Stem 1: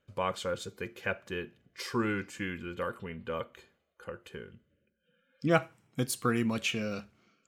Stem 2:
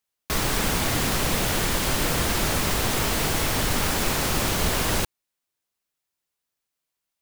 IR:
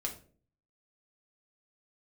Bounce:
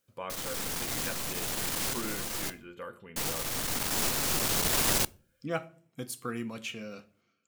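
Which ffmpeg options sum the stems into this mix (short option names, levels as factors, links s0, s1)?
-filter_complex "[0:a]highshelf=f=9700:g=5.5,volume=0.316,asplit=3[s0][s1][s2];[s1]volume=0.447[s3];[1:a]bass=f=250:g=1,treble=f=4000:g=6,aeval=exprs='(tanh(15.8*val(0)+0.75)-tanh(0.75))/15.8':c=same,volume=1.26,asplit=3[s4][s5][s6];[s4]atrim=end=2.5,asetpts=PTS-STARTPTS,afade=t=out:st=2.496:d=0.004:c=hsin[s7];[s5]atrim=start=2.5:end=3.16,asetpts=PTS-STARTPTS,volume=0[s8];[s6]atrim=start=3.16,asetpts=PTS-STARTPTS,afade=t=in:d=0.004:c=hsin[s9];[s7][s8][s9]concat=n=3:v=0:a=1,asplit=2[s10][s11];[s11]volume=0.119[s12];[s2]apad=whole_len=318018[s13];[s10][s13]sidechaincompress=threshold=0.00282:ratio=8:attack=33:release=1330[s14];[2:a]atrim=start_sample=2205[s15];[s3][s12]amix=inputs=2:normalize=0[s16];[s16][s15]afir=irnorm=-1:irlink=0[s17];[s0][s14][s17]amix=inputs=3:normalize=0,lowshelf=f=89:g=-9.5"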